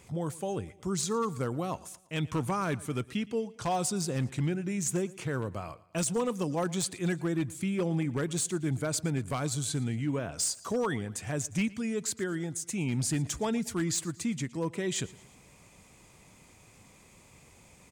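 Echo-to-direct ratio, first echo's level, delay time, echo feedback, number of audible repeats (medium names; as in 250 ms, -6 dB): -20.0 dB, -21.0 dB, 115 ms, 48%, 3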